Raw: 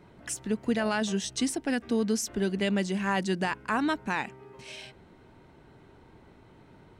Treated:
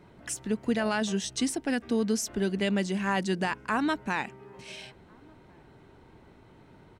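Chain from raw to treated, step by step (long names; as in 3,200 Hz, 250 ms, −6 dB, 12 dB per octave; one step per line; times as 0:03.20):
slap from a distant wall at 240 metres, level −29 dB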